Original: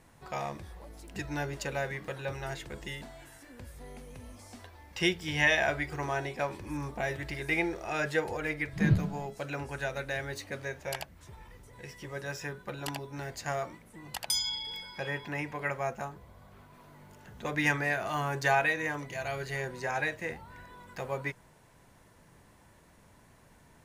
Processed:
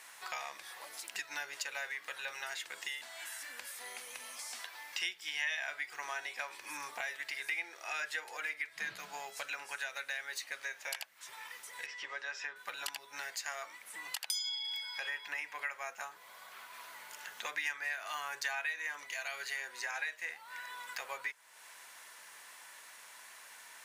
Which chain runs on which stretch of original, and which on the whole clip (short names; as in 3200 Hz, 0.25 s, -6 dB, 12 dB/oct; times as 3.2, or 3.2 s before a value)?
11.86–12.56 HPF 150 Hz + air absorption 150 m
whole clip: HPF 1500 Hz 12 dB/oct; compressor 3:1, threshold -55 dBFS; gain +13.5 dB